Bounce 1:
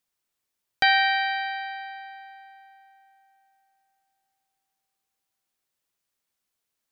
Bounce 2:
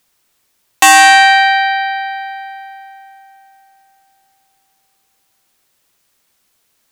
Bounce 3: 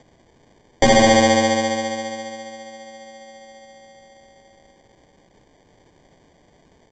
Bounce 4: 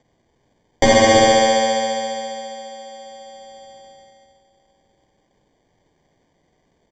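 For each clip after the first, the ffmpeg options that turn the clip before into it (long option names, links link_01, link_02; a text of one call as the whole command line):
ffmpeg -i in.wav -af "aeval=exprs='0.376*sin(PI/2*2.82*val(0)/0.376)':channel_layout=same,volume=7dB" out.wav
ffmpeg -i in.wav -af "acompressor=mode=upward:threshold=-27dB:ratio=2.5,aresample=16000,acrusher=samples=12:mix=1:aa=0.000001,aresample=44100,volume=-7dB" out.wav
ffmpeg -i in.wav -af "agate=range=-11dB:threshold=-47dB:ratio=16:detection=peak,aecho=1:1:47|95|296|323:0.501|0.376|0.188|0.376" out.wav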